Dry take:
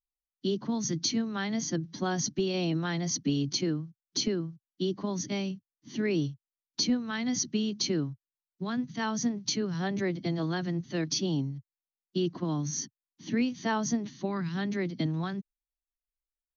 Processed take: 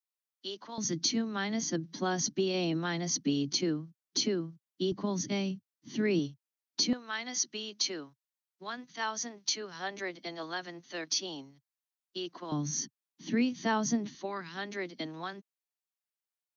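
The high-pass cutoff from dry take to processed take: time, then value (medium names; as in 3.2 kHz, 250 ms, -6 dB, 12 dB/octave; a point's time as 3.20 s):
760 Hz
from 0.78 s 200 Hz
from 4.92 s 94 Hz
from 6.19 s 230 Hz
from 6.93 s 600 Hz
from 12.52 s 150 Hz
from 14.15 s 450 Hz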